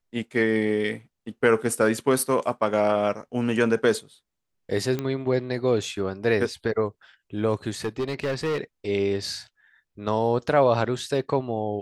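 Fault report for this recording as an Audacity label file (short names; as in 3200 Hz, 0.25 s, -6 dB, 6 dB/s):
4.990000	4.990000	pop -15 dBFS
7.850000	8.580000	clipped -22.5 dBFS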